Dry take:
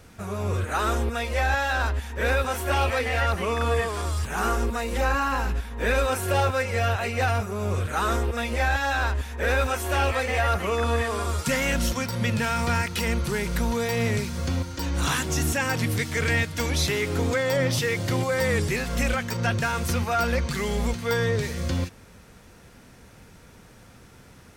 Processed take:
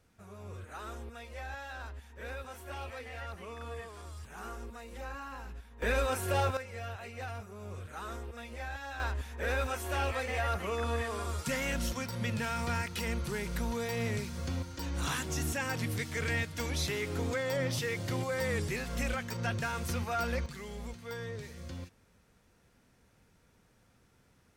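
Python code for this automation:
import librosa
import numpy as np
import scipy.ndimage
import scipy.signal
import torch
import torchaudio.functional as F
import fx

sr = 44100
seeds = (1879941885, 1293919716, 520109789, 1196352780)

y = fx.gain(x, sr, db=fx.steps((0.0, -18.5), (5.82, -7.0), (6.57, -17.0), (9.0, -9.0), (20.46, -16.5)))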